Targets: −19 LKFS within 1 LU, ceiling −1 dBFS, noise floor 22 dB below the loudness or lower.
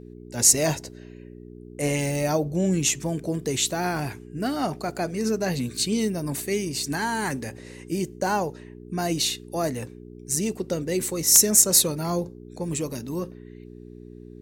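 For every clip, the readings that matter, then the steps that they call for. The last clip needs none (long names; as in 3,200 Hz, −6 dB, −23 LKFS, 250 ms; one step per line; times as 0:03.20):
number of dropouts 1; longest dropout 1.3 ms; mains hum 60 Hz; hum harmonics up to 420 Hz; level of the hum −42 dBFS; integrated loudness −23.5 LKFS; sample peak −2.5 dBFS; target loudness −19.0 LKFS
→ repair the gap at 0:02.89, 1.3 ms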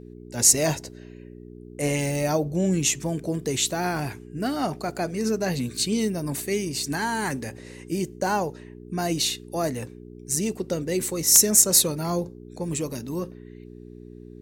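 number of dropouts 0; mains hum 60 Hz; hum harmonics up to 420 Hz; level of the hum −42 dBFS
→ hum removal 60 Hz, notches 7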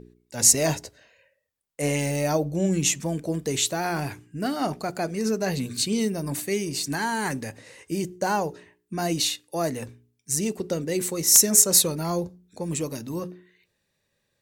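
mains hum none found; integrated loudness −24.0 LKFS; sample peak −2.5 dBFS; target loudness −19.0 LKFS
→ level +5 dB
brickwall limiter −1 dBFS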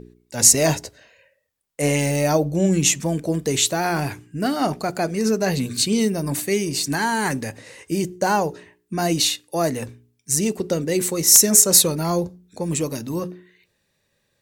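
integrated loudness −19.5 LKFS; sample peak −1.0 dBFS; background noise floor −70 dBFS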